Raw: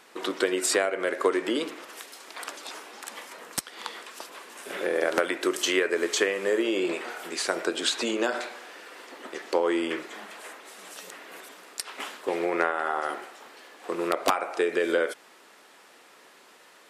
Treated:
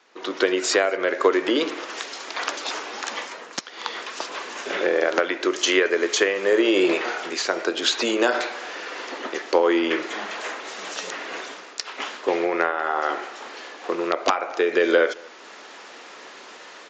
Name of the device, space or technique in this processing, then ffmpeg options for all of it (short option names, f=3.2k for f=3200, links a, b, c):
Bluetooth headset: -filter_complex "[0:a]highpass=f=76:p=1,adynamicequalizer=threshold=0.00178:dfrequency=220:dqfactor=6.3:tfrequency=220:tqfactor=6.3:attack=5:release=100:ratio=0.375:range=2.5:mode=cutabove:tftype=bell,highpass=190,asplit=2[a][b];[b]adelay=221.6,volume=-26dB,highshelf=f=4k:g=-4.99[c];[a][c]amix=inputs=2:normalize=0,dynaudnorm=f=120:g=5:m=16.5dB,aresample=16000,aresample=44100,volume=-4.5dB" -ar 16000 -c:a sbc -b:a 64k